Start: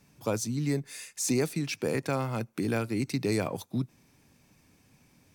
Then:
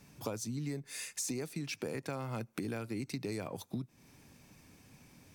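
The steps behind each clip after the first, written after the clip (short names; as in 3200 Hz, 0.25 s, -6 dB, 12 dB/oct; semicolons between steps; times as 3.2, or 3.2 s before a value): compressor 6:1, threshold -39 dBFS, peak gain reduction 15.5 dB; gain +3 dB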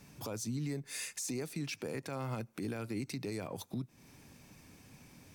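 limiter -31.5 dBFS, peak gain reduction 9 dB; gain +2 dB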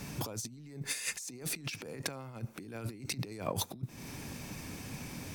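negative-ratio compressor -45 dBFS, ratio -0.5; gain +7 dB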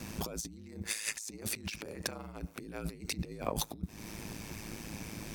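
ring modulator 54 Hz; gain +3 dB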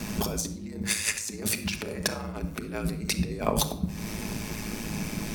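shoebox room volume 2200 m³, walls furnished, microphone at 1.4 m; gain +8 dB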